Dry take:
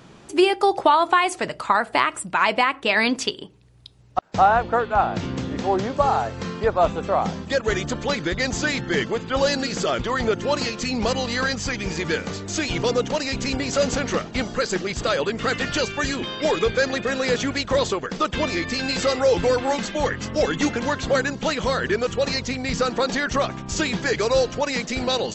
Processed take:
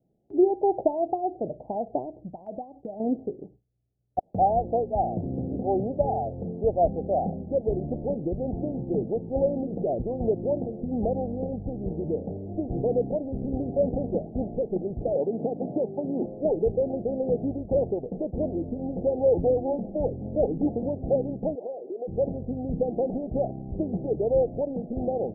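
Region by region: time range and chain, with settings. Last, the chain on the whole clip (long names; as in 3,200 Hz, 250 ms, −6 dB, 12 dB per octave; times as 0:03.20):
0:02.28–0:03.00: downward compressor 3 to 1, threshold −25 dBFS + parametric band 390 Hz −6 dB 0.97 octaves
0:15.15–0:16.26: high-pass filter 150 Hz 24 dB per octave + parametric band 970 Hz +4.5 dB 0.81 octaves + multiband upward and downward compressor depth 100%
0:21.55–0:22.07: high-pass filter 360 Hz 24 dB per octave + downward compressor 10 to 1, threshold −25 dBFS
whole clip: Butterworth low-pass 780 Hz 96 dB per octave; noise gate with hold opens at −36 dBFS; level −2.5 dB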